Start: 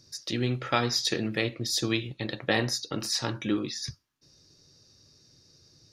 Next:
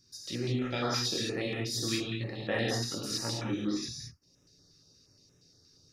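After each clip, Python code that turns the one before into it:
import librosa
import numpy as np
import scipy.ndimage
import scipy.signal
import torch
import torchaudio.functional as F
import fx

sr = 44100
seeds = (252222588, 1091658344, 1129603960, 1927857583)

y = fx.wow_flutter(x, sr, seeds[0], rate_hz=2.1, depth_cents=21.0)
y = fx.rev_gated(y, sr, seeds[1], gate_ms=240, shape='flat', drr_db=-4.0)
y = fx.filter_held_notch(y, sr, hz=8.5, low_hz=630.0, high_hz=4500.0)
y = y * 10.0 ** (-8.0 / 20.0)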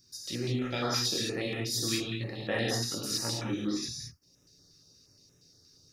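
y = fx.high_shelf(x, sr, hz=8600.0, db=9.5)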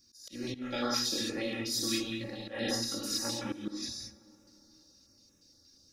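y = x + 0.77 * np.pad(x, (int(3.6 * sr / 1000.0), 0))[:len(x)]
y = fx.auto_swell(y, sr, attack_ms=172.0)
y = fx.rev_plate(y, sr, seeds[2], rt60_s=3.9, hf_ratio=0.4, predelay_ms=0, drr_db=16.5)
y = y * 10.0 ** (-3.5 / 20.0)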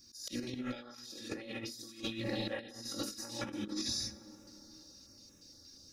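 y = fx.over_compress(x, sr, threshold_db=-40.0, ratio=-0.5)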